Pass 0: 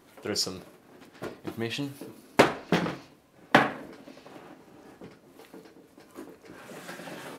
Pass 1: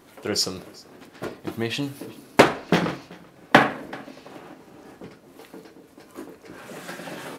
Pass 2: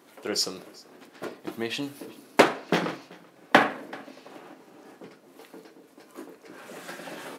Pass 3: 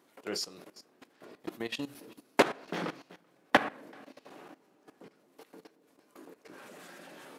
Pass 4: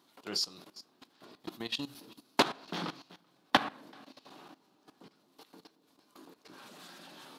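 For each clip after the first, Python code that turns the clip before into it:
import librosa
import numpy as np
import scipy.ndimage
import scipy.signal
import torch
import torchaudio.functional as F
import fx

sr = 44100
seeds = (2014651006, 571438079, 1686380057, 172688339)

y1 = x + 10.0 ** (-23.5 / 20.0) * np.pad(x, (int(384 * sr / 1000.0), 0))[:len(x)]
y1 = F.gain(torch.from_numpy(y1), 5.0).numpy()
y2 = scipy.signal.sosfilt(scipy.signal.butter(2, 210.0, 'highpass', fs=sr, output='sos'), y1)
y2 = F.gain(torch.from_numpy(y2), -3.0).numpy()
y3 = fx.level_steps(y2, sr, step_db=16)
y3 = F.gain(torch.from_numpy(y3), -2.5).numpy()
y4 = fx.graphic_eq(y3, sr, hz=(500, 1000, 2000, 4000, 8000), db=(-8, 3, -7, 9, -3))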